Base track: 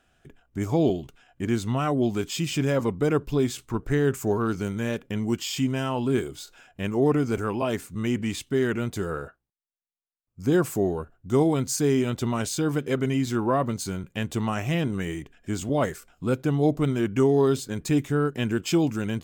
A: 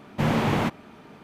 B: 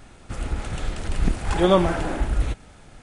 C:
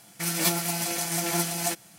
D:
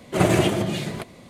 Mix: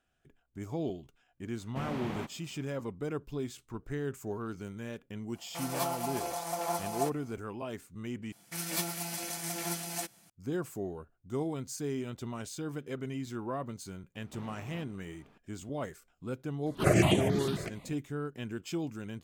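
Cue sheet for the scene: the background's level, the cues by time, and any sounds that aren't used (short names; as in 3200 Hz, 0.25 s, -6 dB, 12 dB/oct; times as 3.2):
base track -13 dB
1.57 add A -15 dB
5.35 add C -13.5 dB + band shelf 750 Hz +14 dB
8.32 replace with C -9 dB
14.15 add A -15 dB + compressor, threshold -31 dBFS
16.66 add D -3 dB + step phaser 11 Hz 670–4900 Hz
not used: B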